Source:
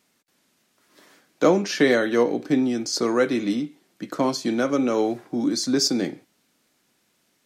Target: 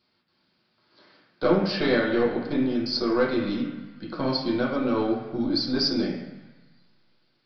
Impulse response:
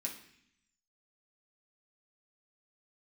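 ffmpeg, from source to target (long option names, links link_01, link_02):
-filter_complex "[0:a]aeval=exprs='(tanh(3.55*val(0)+0.3)-tanh(0.3))/3.55':channel_layout=same[link_01];[1:a]atrim=start_sample=2205,asetrate=25578,aresample=44100[link_02];[link_01][link_02]afir=irnorm=-1:irlink=0,aresample=11025,aresample=44100,volume=-4dB"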